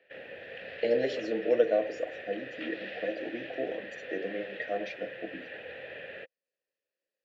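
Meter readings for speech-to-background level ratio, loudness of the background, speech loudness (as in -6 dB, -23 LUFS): 9.5 dB, -42.5 LUFS, -33.0 LUFS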